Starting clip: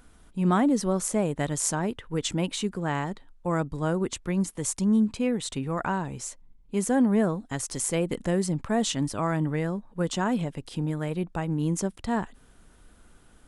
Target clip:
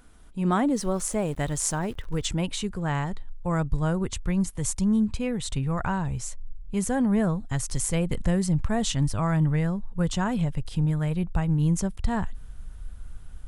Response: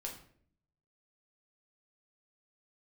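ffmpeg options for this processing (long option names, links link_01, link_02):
-filter_complex "[0:a]asubboost=boost=9.5:cutoff=96,asettb=1/sr,asplit=3[link_01][link_02][link_03];[link_01]atrim=end=0.734[link_04];[link_02]atrim=start=0.73:end=2.27,asetpts=PTS-STARTPTS,afade=type=in:duration=0.004:curve=qsin,afade=type=out:start_time=1.536:duration=0.004:curve=qsin,aeval=exprs='val(0)*gte(abs(val(0)),0.00562)':channel_layout=same[link_05];[link_03]atrim=start=2.266[link_06];[link_04][link_05]acrossfade=duration=0.004:curve1=hsin:curve2=qsin[link_07];[link_07][link_06]acrossfade=duration=0.004:curve1=qsin:curve2=hsin"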